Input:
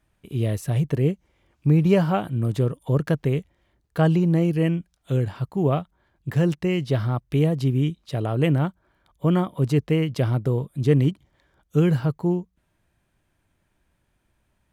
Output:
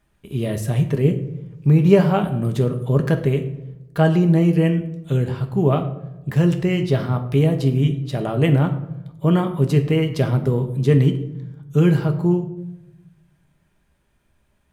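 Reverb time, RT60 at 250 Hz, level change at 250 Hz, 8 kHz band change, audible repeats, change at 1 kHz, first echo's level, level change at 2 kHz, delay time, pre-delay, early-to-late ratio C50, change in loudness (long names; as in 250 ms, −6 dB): 0.95 s, 1.2 s, +4.0 dB, can't be measured, no echo audible, +3.5 dB, no echo audible, +4.0 dB, no echo audible, 5 ms, 11.5 dB, +4.0 dB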